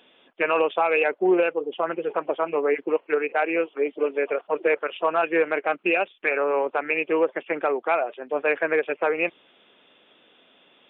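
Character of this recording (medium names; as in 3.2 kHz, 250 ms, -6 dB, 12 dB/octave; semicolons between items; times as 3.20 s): noise floor -59 dBFS; spectral tilt -2.0 dB/octave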